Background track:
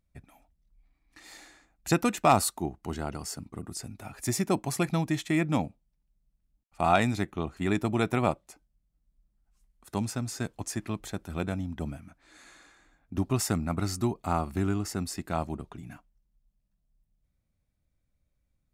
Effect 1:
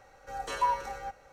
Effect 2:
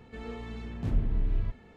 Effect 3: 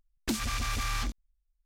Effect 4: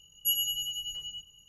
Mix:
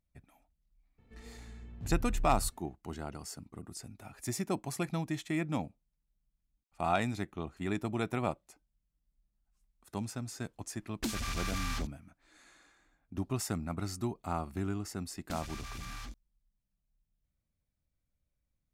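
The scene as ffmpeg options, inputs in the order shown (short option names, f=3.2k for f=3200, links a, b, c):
-filter_complex "[3:a]asplit=2[a][b];[0:a]volume=-7dB[c];[2:a]lowshelf=f=140:g=10.5,atrim=end=1.76,asetpts=PTS-STARTPTS,volume=-16dB,afade=t=in:d=0.004:c=hsin,afade=t=out:st=1.756:d=0.004:c=hsin,adelay=980[d];[a]atrim=end=1.65,asetpts=PTS-STARTPTS,volume=-4.5dB,afade=t=in:d=0.004:c=hsin,afade=t=out:st=1.646:d=0.004:c=hsin,adelay=10750[e];[b]atrim=end=1.65,asetpts=PTS-STARTPTS,volume=-12.5dB,afade=t=in:d=0.004:c=hsin,afade=t=out:st=1.646:d=0.004:c=hsin,adelay=15020[f];[c][d][e][f]amix=inputs=4:normalize=0"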